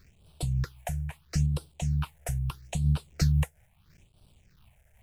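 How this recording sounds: a quantiser's noise floor 10-bit, dither none; phasing stages 6, 0.77 Hz, lowest notch 290–1900 Hz; random flutter of the level

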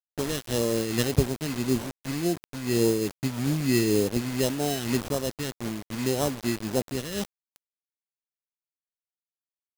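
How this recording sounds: aliases and images of a low sample rate 2.3 kHz, jitter 0%; phasing stages 2, 1.8 Hz, lowest notch 800–2000 Hz; a quantiser's noise floor 6-bit, dither none; random flutter of the level

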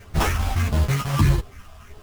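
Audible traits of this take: phasing stages 4, 1.6 Hz, lowest notch 320–2300 Hz; aliases and images of a low sample rate 4.2 kHz, jitter 20%; a shimmering, thickened sound

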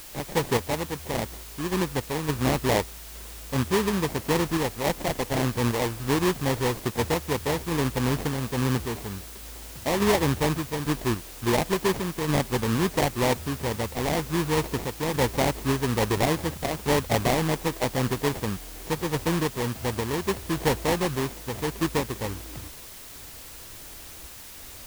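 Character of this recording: aliases and images of a low sample rate 1.4 kHz, jitter 20%; random-step tremolo; a quantiser's noise floor 8-bit, dither triangular

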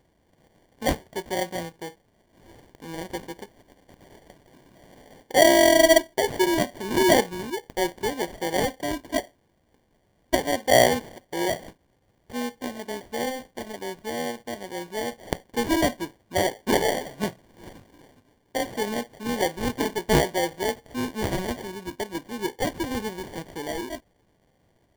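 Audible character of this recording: aliases and images of a low sample rate 1.3 kHz, jitter 0%

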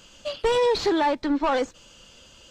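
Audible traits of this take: noise floor -52 dBFS; spectral tilt -2.0 dB/octave

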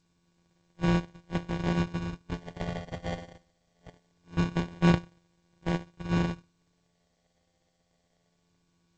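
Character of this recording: a buzz of ramps at a fixed pitch in blocks of 256 samples; phasing stages 8, 0.23 Hz, lowest notch 280–1200 Hz; aliases and images of a low sample rate 1.3 kHz, jitter 0%; G.722

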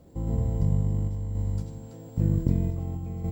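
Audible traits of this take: a quantiser's noise floor 12-bit, dither triangular; random-step tremolo 3.7 Hz, depth 55%; Opus

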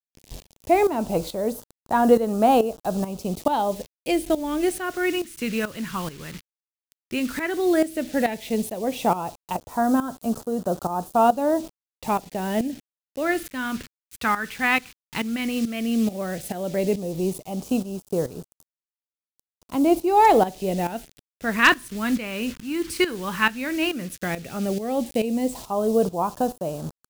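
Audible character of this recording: a quantiser's noise floor 8-bit, dither none; phasing stages 2, 0.12 Hz, lowest notch 650–2100 Hz; tremolo saw up 2.3 Hz, depth 75%

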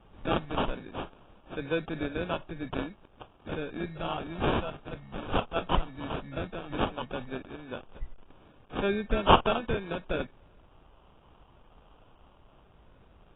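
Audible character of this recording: a quantiser's noise floor 10-bit, dither none; phasing stages 4, 0.15 Hz, lowest notch 350–4800 Hz; aliases and images of a low sample rate 2 kHz, jitter 0%; AAC

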